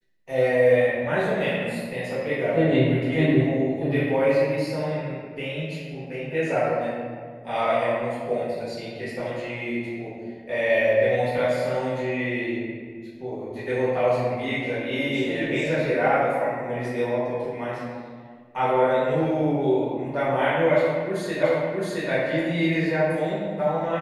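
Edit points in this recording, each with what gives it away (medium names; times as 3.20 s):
21.43 s: repeat of the last 0.67 s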